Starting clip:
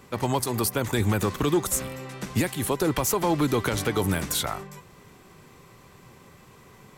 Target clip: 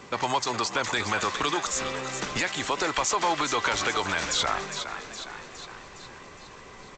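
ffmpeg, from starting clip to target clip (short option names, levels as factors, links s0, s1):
-filter_complex "[0:a]lowshelf=f=180:g=-10.5,acrossover=split=720[s0][s1];[s0]acompressor=threshold=0.0112:ratio=6[s2];[s2][s1]amix=inputs=2:normalize=0,asplit=7[s3][s4][s5][s6][s7][s8][s9];[s4]adelay=412,afreqshift=71,volume=0.251[s10];[s5]adelay=824,afreqshift=142,volume=0.146[s11];[s6]adelay=1236,afreqshift=213,volume=0.0841[s12];[s7]adelay=1648,afreqshift=284,volume=0.049[s13];[s8]adelay=2060,afreqshift=355,volume=0.0285[s14];[s9]adelay=2472,afreqshift=426,volume=0.0164[s15];[s3][s10][s11][s12][s13][s14][s15]amix=inputs=7:normalize=0,asplit=2[s16][s17];[s17]alimiter=limit=0.0631:level=0:latency=1:release=13,volume=1.26[s18];[s16][s18]amix=inputs=2:normalize=0,asubboost=boost=5.5:cutoff=54" -ar 16000 -c:a g722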